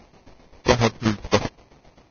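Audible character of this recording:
aliases and images of a low sample rate 1,500 Hz, jitter 20%
tremolo saw down 7.6 Hz, depth 80%
Ogg Vorbis

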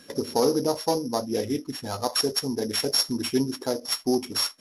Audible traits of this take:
a buzz of ramps at a fixed pitch in blocks of 8 samples
MP3

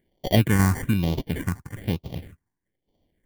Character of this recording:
aliases and images of a low sample rate 1,300 Hz, jitter 0%
tremolo saw down 3.4 Hz, depth 40%
phaser sweep stages 4, 1.1 Hz, lowest notch 530–1,600 Hz

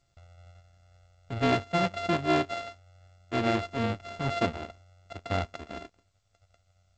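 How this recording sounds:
a buzz of ramps at a fixed pitch in blocks of 64 samples
G.722

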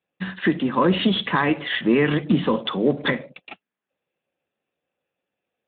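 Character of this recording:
Speex

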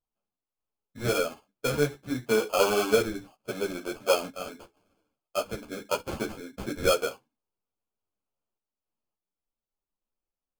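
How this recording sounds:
sample-and-hold tremolo
aliases and images of a low sample rate 1,900 Hz, jitter 0%
a shimmering, thickened sound

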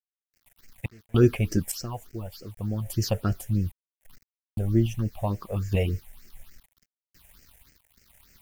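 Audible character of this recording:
sample-and-hold tremolo 3.5 Hz, depth 100%
a quantiser's noise floor 10 bits, dither none
phaser sweep stages 6, 3.4 Hz, lowest notch 300–1,000 Hz

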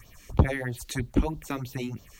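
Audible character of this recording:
phaser sweep stages 4, 3.1 Hz, lowest notch 100–2,000 Hz
a quantiser's noise floor 12 bits, dither none

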